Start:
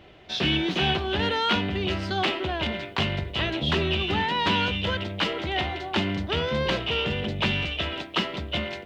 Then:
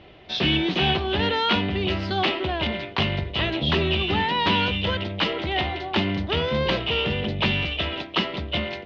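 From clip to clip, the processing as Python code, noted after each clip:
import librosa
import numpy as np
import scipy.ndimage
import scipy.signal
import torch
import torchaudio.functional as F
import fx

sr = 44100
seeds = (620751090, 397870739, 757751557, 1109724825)

y = scipy.signal.sosfilt(scipy.signal.butter(4, 5200.0, 'lowpass', fs=sr, output='sos'), x)
y = fx.peak_eq(y, sr, hz=1500.0, db=-3.5, octaves=0.31)
y = F.gain(torch.from_numpy(y), 2.5).numpy()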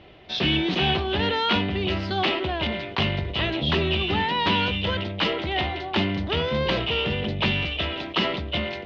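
y = fx.sustainer(x, sr, db_per_s=51.0)
y = F.gain(torch.from_numpy(y), -1.0).numpy()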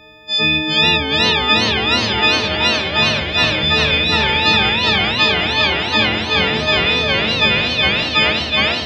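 y = fx.freq_snap(x, sr, grid_st=6)
y = fx.echo_warbled(y, sr, ms=417, feedback_pct=66, rate_hz=2.8, cents=213, wet_db=-3)
y = F.gain(torch.from_numpy(y), 1.5).numpy()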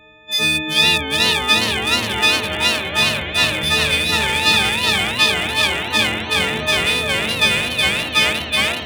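y = fx.wiener(x, sr, points=9)
y = fx.high_shelf(y, sr, hz=2300.0, db=10.5)
y = F.gain(torch.from_numpy(y), -4.5).numpy()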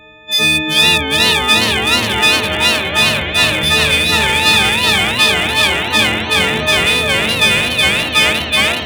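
y = 10.0 ** (-9.0 / 20.0) * np.tanh(x / 10.0 ** (-9.0 / 20.0))
y = F.gain(torch.from_numpy(y), 6.0).numpy()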